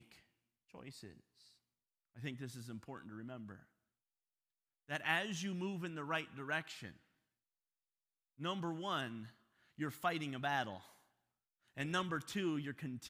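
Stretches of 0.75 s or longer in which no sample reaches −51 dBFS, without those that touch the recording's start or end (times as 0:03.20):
0:01.13–0:02.16
0:03.57–0:04.89
0:06.92–0:08.39
0:10.85–0:11.77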